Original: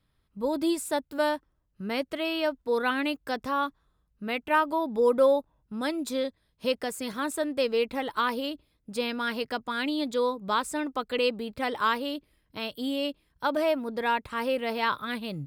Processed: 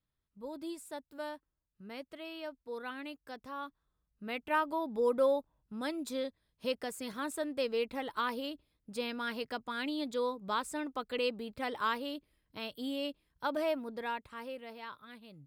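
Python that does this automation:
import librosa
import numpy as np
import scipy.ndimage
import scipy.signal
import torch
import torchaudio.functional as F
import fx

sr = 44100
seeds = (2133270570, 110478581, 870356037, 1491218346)

y = fx.gain(x, sr, db=fx.line((3.47, -15.0), (4.42, -7.0), (13.75, -7.0), (14.87, -19.0)))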